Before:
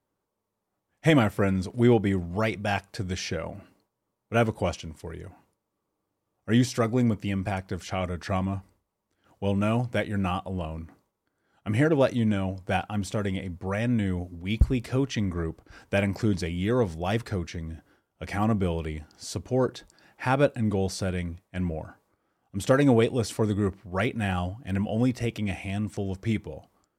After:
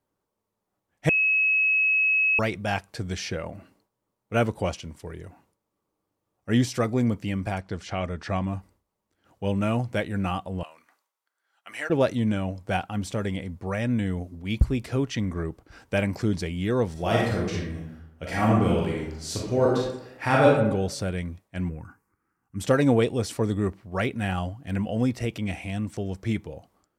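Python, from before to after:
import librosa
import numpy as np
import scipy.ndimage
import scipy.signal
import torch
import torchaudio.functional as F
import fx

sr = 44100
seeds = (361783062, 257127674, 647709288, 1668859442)

y = fx.lowpass(x, sr, hz=6800.0, slope=12, at=(7.61, 8.47))
y = fx.highpass(y, sr, hz=1100.0, slope=12, at=(10.63, 11.9))
y = fx.reverb_throw(y, sr, start_s=16.92, length_s=3.59, rt60_s=0.83, drr_db=-4.0)
y = fx.fixed_phaser(y, sr, hz=1500.0, stages=4, at=(21.69, 22.61))
y = fx.edit(y, sr, fx.bleep(start_s=1.09, length_s=1.3, hz=2570.0, db=-18.5), tone=tone)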